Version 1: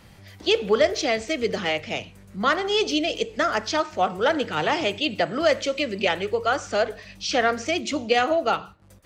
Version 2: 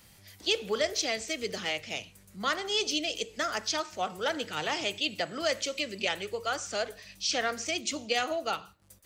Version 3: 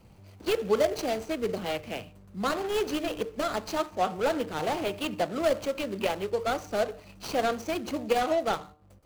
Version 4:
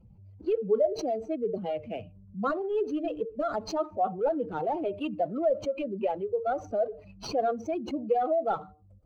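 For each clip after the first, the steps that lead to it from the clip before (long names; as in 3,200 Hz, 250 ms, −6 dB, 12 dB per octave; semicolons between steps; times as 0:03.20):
first-order pre-emphasis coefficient 0.8; level +3 dB
running median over 25 samples; hum removal 150.7 Hz, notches 9; level +7 dB
expanding power law on the bin magnitudes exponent 2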